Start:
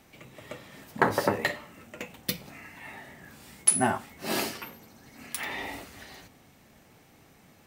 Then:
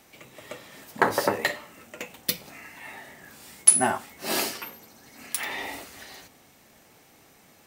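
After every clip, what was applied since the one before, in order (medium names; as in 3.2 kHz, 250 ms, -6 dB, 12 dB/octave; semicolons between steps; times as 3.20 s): tone controls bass -7 dB, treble +4 dB; trim +2 dB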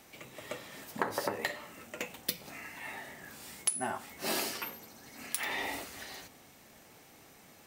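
compression 5:1, threshold -29 dBFS, peak gain reduction 17.5 dB; trim -1 dB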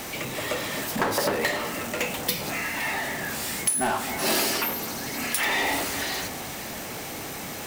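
power-law waveshaper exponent 0.5; echo whose repeats swap between lows and highs 258 ms, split 1.4 kHz, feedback 50%, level -10.5 dB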